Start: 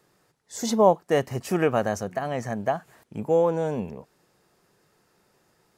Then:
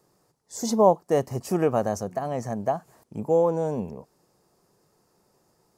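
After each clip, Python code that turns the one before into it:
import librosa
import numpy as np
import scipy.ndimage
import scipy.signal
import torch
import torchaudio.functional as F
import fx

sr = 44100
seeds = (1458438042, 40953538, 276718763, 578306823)

y = fx.band_shelf(x, sr, hz=2300.0, db=-8.5, octaves=1.7)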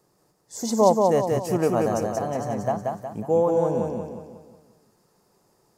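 y = fx.echo_feedback(x, sr, ms=182, feedback_pct=45, wet_db=-3.0)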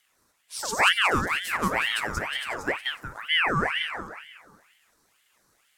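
y = fx.bass_treble(x, sr, bass_db=-8, treble_db=5)
y = fx.ring_lfo(y, sr, carrier_hz=1600.0, swing_pct=60, hz=2.1)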